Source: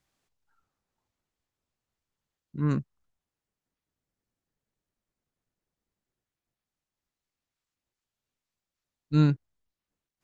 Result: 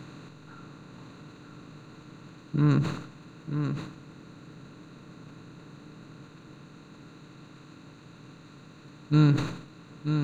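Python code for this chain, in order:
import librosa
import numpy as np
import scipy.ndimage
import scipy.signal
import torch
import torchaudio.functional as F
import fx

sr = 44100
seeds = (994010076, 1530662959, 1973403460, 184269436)

p1 = fx.bin_compress(x, sr, power=0.4)
p2 = p1 + fx.echo_single(p1, sr, ms=937, db=-7.0, dry=0)
y = fx.sustainer(p2, sr, db_per_s=81.0)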